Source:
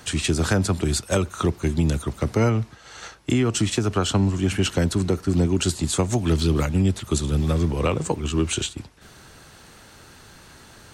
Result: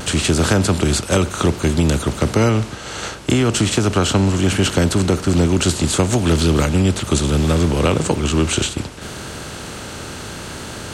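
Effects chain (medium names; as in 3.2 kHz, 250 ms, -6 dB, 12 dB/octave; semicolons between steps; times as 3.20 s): spectral levelling over time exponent 0.6; vibrato 0.68 Hz 20 cents; trim +2.5 dB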